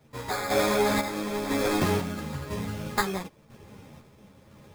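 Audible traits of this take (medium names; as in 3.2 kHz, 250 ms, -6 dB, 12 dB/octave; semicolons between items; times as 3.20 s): aliases and images of a low sample rate 2.9 kHz, jitter 0%; random-step tremolo 2 Hz, depth 70%; a shimmering, thickened sound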